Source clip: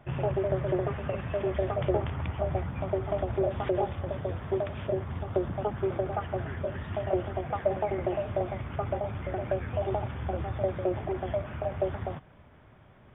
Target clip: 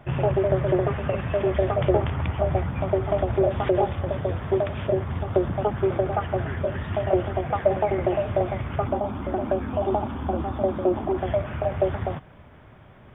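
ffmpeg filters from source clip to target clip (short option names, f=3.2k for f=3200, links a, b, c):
-filter_complex "[0:a]asettb=1/sr,asplit=3[a][b][c];[a]atrim=end=8.874[d];[b]atrim=start=8.87:end=11.18,asetpts=PTS-STARTPTS,afade=t=in:d=0.004:c=qsin,afade=t=out:st=2.306:d=0.004:c=qsin,equalizer=f=125:t=o:w=1:g=-11,equalizer=f=250:t=o:w=1:g=11,equalizer=f=500:t=o:w=1:g=-5,equalizer=f=1k:t=o:w=1:g=5,equalizer=f=2k:t=o:w=1:g=-9[e];[c]atrim=start=11.176[f];[d][e]acrossfade=d=0.004:c1=hsin:c2=qsin[g];[g][f]acrossfade=d=0.004:c1=qsin:c2=hsin,volume=6.5dB"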